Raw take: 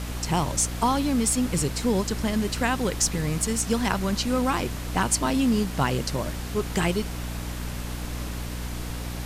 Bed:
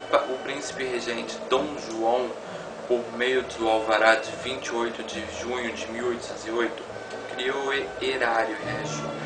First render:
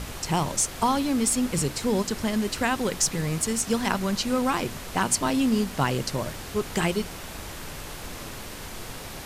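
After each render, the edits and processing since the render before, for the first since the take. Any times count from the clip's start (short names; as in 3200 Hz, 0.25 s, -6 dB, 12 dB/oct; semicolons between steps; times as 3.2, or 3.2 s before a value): de-hum 60 Hz, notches 5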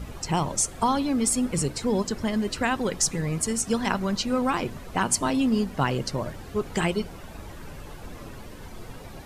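denoiser 12 dB, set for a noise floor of -38 dBFS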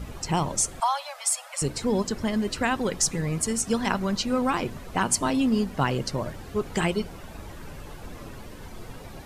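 0.8–1.62 steep high-pass 580 Hz 96 dB/oct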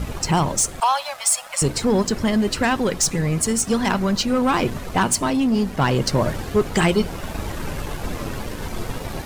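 sample leveller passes 2; vocal rider within 5 dB 0.5 s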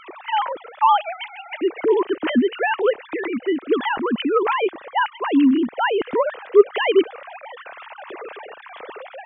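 sine-wave speech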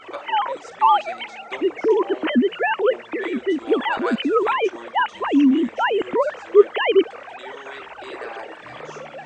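add bed -12.5 dB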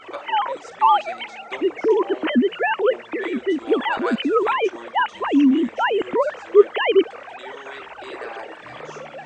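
nothing audible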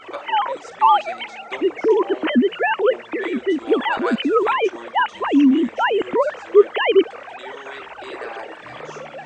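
gain +1.5 dB; limiter -2 dBFS, peak gain reduction 2 dB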